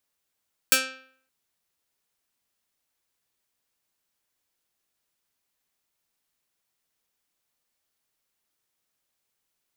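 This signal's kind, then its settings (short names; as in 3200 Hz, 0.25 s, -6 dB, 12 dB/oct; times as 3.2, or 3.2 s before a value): plucked string C4, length 0.57 s, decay 0.58 s, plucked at 0.26, medium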